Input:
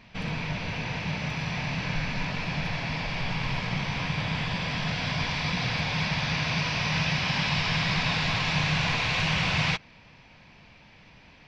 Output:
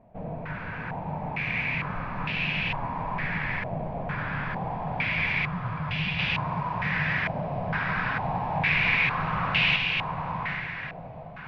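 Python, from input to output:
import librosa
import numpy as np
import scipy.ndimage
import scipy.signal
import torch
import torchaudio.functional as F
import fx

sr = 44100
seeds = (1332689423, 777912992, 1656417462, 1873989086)

y = fx.spec_expand(x, sr, power=3.5, at=(5.45, 6.19))
y = fx.echo_diffused(y, sr, ms=797, feedback_pct=46, wet_db=-3)
y = fx.filter_held_lowpass(y, sr, hz=2.2, low_hz=660.0, high_hz=2800.0)
y = y * 10.0 ** (-4.5 / 20.0)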